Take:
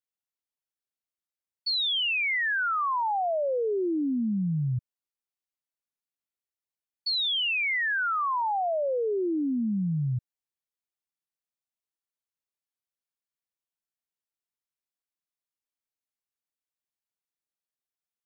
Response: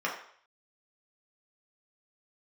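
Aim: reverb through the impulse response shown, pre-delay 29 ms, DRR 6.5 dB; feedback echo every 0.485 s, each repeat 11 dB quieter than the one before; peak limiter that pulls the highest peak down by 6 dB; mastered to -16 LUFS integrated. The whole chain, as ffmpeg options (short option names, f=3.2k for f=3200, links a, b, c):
-filter_complex "[0:a]alimiter=level_in=6dB:limit=-24dB:level=0:latency=1,volume=-6dB,aecho=1:1:485|970|1455:0.282|0.0789|0.0221,asplit=2[a][b];[1:a]atrim=start_sample=2205,adelay=29[c];[b][c]afir=irnorm=-1:irlink=0,volume=-15.5dB[d];[a][d]amix=inputs=2:normalize=0,volume=16dB"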